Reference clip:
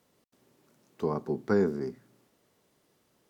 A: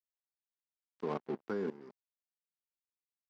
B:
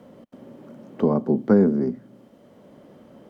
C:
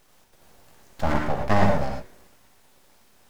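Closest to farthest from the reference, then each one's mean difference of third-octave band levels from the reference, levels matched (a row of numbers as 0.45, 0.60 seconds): B, A, C; 4.0, 6.0, 11.0 decibels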